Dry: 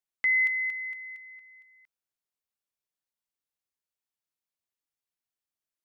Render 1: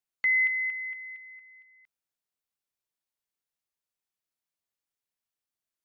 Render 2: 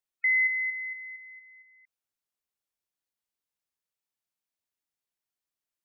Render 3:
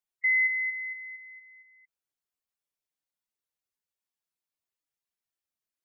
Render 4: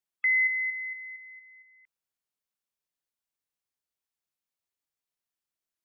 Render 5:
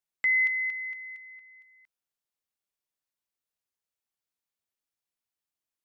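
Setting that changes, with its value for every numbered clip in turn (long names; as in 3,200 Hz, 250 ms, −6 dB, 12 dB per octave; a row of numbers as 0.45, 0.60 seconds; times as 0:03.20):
gate on every frequency bin, under each frame's peak: −50, −25, −10, −35, −60 decibels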